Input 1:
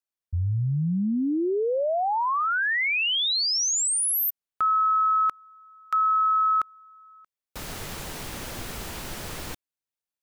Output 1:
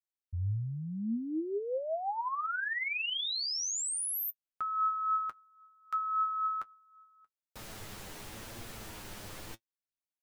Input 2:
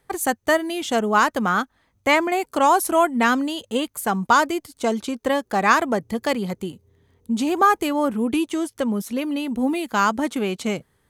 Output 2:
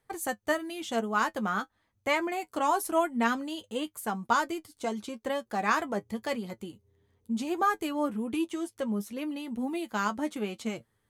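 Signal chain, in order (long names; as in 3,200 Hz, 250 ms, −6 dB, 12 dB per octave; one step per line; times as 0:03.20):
flanger 0.93 Hz, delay 8.6 ms, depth 1.5 ms, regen +42%
level −6 dB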